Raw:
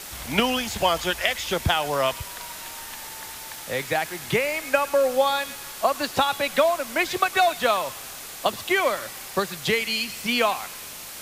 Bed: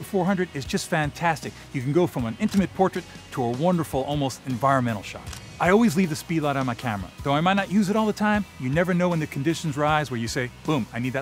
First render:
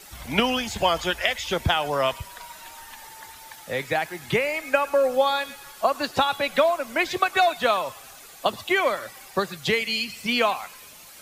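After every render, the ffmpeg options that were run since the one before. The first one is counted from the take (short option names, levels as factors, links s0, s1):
-af "afftdn=nr=10:nf=-38"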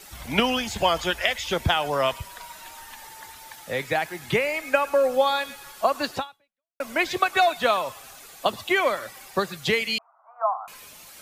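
-filter_complex "[0:a]asettb=1/sr,asplit=3[s0][s1][s2];[s0]atrim=end=9.984[s3];[s1]atrim=start=9.98:end=10.68,asetpts=PTS-STARTPTS,afade=t=in:d=0.004:c=qsin,afade=t=out:st=0.696:d=0.004:c=qsin,asuperpass=centerf=930:order=12:qfactor=1.3[s4];[s2]atrim=start=10.676[s5];[s3][s4]acrossfade=d=0.004:c1=hsin:c2=qsin[s6];[s6][s5]acrossfade=d=0.004:c1=qsin:c2=hsin,asplit=2[s7][s8];[s7]atrim=end=6.8,asetpts=PTS-STARTPTS,afade=t=out:st=6.15:d=0.65:c=exp[s9];[s8]atrim=start=6.8,asetpts=PTS-STARTPTS,afade=t=in:d=0.004:c=hsin[s10];[s9][s10]concat=n=2:v=0:a=1"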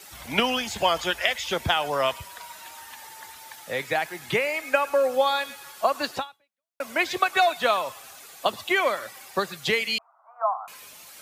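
-af "highpass=56,lowshelf=f=290:g=-6"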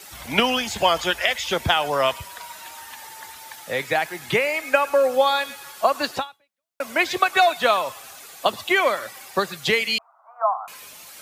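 -af "volume=1.5,alimiter=limit=0.708:level=0:latency=1"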